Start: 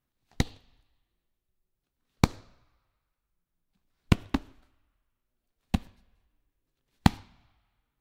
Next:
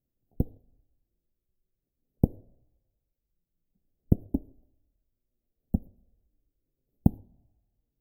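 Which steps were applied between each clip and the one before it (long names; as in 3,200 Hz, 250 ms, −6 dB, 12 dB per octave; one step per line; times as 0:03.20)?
inverse Chebyshev band-stop filter 1,100–8,500 Hz, stop band 40 dB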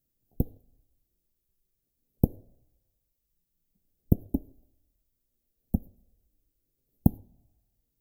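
high-shelf EQ 3,900 Hz +12 dB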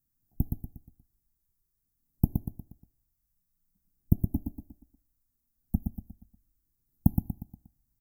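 phaser with its sweep stopped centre 1,200 Hz, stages 4
on a send: repeating echo 119 ms, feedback 42%, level −5.5 dB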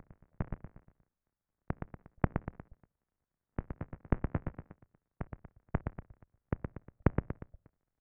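sub-harmonics by changed cycles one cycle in 3, inverted
single-sideband voice off tune −170 Hz 160–2,200 Hz
backwards echo 538 ms −7.5 dB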